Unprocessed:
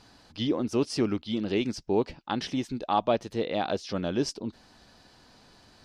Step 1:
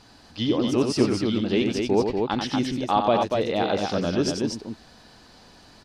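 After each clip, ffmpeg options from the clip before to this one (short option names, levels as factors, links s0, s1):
-af "aecho=1:1:90.38|239.1:0.501|0.631,volume=1.5"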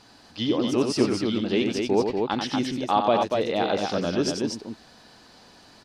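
-af "lowshelf=f=96:g=-10.5"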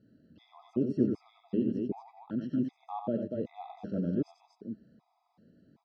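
-af "bandpass=f=180:t=q:w=1.4:csg=0,bandreject=f=198.6:t=h:w=4,bandreject=f=397.2:t=h:w=4,bandreject=f=595.8:t=h:w=4,bandreject=f=794.4:t=h:w=4,bandreject=f=993:t=h:w=4,bandreject=f=1191.6:t=h:w=4,bandreject=f=1390.2:t=h:w=4,bandreject=f=1588.8:t=h:w=4,bandreject=f=1787.4:t=h:w=4,bandreject=f=1986:t=h:w=4,bandreject=f=2184.6:t=h:w=4,bandreject=f=2383.2:t=h:w=4,bandreject=f=2581.8:t=h:w=4,bandreject=f=2780.4:t=h:w=4,bandreject=f=2979:t=h:w=4,bandreject=f=3177.6:t=h:w=4,bandreject=f=3376.2:t=h:w=4,bandreject=f=3574.8:t=h:w=4,bandreject=f=3773.4:t=h:w=4,bandreject=f=3972:t=h:w=4,bandreject=f=4170.6:t=h:w=4,bandreject=f=4369.2:t=h:w=4,bandreject=f=4567.8:t=h:w=4,bandreject=f=4766.4:t=h:w=4,bandreject=f=4965:t=h:w=4,bandreject=f=5163.6:t=h:w=4,bandreject=f=5362.2:t=h:w=4,bandreject=f=5560.8:t=h:w=4,afftfilt=real='re*gt(sin(2*PI*1.3*pts/sr)*(1-2*mod(floor(b*sr/1024/660),2)),0)':imag='im*gt(sin(2*PI*1.3*pts/sr)*(1-2*mod(floor(b*sr/1024/660),2)),0)':win_size=1024:overlap=0.75"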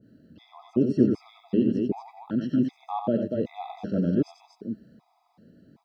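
-af "adynamicequalizer=threshold=0.00355:dfrequency=1500:dqfactor=0.7:tfrequency=1500:tqfactor=0.7:attack=5:release=100:ratio=0.375:range=2.5:mode=boostabove:tftype=highshelf,volume=2.24"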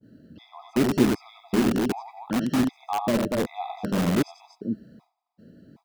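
-filter_complex "[0:a]agate=range=0.0224:threshold=0.00178:ratio=3:detection=peak,asplit=2[s0][s1];[s1]aeval=exprs='(mod(11.9*val(0)+1,2)-1)/11.9':c=same,volume=0.631[s2];[s0][s2]amix=inputs=2:normalize=0"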